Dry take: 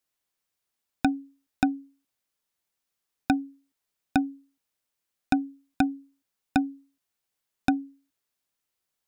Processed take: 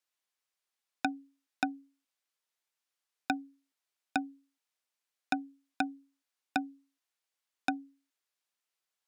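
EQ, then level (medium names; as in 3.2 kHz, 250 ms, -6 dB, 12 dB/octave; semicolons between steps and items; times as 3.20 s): frequency weighting A; -3.5 dB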